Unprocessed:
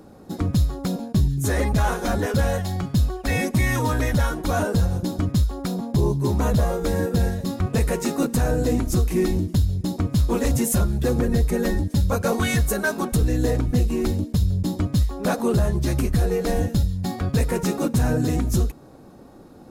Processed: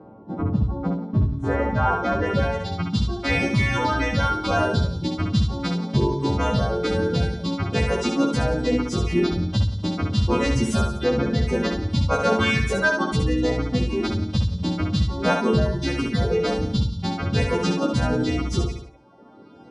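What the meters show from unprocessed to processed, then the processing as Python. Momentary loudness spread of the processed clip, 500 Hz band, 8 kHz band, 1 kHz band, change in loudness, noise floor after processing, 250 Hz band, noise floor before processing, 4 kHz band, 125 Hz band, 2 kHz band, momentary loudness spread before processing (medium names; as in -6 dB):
5 LU, +1.0 dB, -7.5 dB, +3.5 dB, -0.5 dB, -45 dBFS, 0.0 dB, -45 dBFS, +5.0 dB, -2.0 dB, +3.5 dB, 3 LU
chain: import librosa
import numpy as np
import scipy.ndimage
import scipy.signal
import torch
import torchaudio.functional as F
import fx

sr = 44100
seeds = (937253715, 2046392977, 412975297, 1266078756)

p1 = fx.freq_snap(x, sr, grid_st=2)
p2 = scipy.signal.sosfilt(scipy.signal.butter(2, 77.0, 'highpass', fs=sr, output='sos'), p1)
p3 = fx.dereverb_blind(p2, sr, rt60_s=1.3)
p4 = fx.notch(p3, sr, hz=1800.0, q=14.0)
p5 = p4 + 10.0 ** (-15.0 / 20.0) * np.pad(p4, (int(177 * sr / 1000.0), 0))[:len(p4)]
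p6 = np.clip(p5, -10.0 ** (-14.5 / 20.0), 10.0 ** (-14.5 / 20.0))
p7 = p5 + F.gain(torch.from_numpy(p6), -8.0).numpy()
p8 = fx.air_absorb(p7, sr, metres=70.0)
p9 = fx.echo_feedback(p8, sr, ms=68, feedback_pct=29, wet_db=-5)
y = fx.filter_sweep_lowpass(p9, sr, from_hz=920.0, to_hz=3600.0, start_s=1.14, end_s=2.87, q=1.1)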